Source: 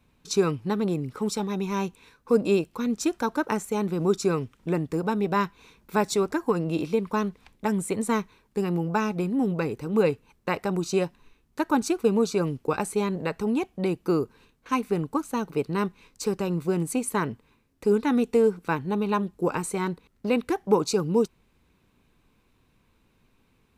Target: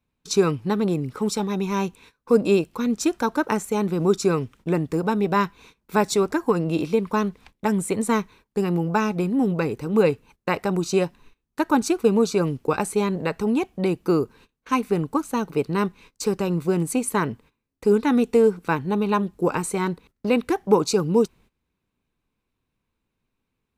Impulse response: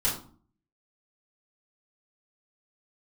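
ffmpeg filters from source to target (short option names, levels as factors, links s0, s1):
-af "agate=range=0.141:threshold=0.00282:ratio=16:detection=peak,volume=1.5"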